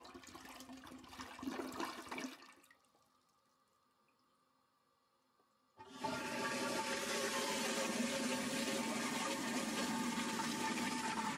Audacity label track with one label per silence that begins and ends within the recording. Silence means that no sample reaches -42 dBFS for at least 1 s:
2.290000	6.020000	silence